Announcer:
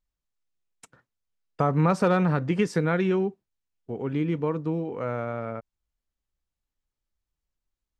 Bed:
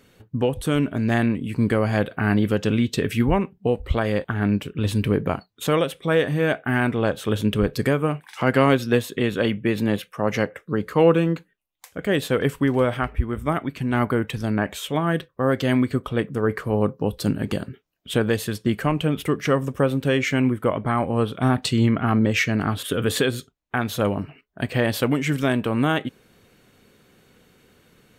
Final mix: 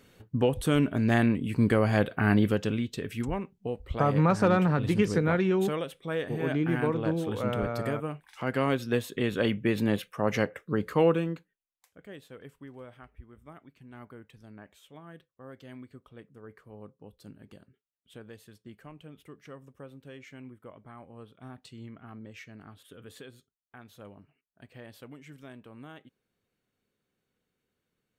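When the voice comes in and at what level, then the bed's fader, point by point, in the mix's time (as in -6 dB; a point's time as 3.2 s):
2.40 s, -1.5 dB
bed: 2.43 s -3 dB
2.93 s -12 dB
8.3 s -12 dB
9.5 s -4.5 dB
10.92 s -4.5 dB
12.25 s -26 dB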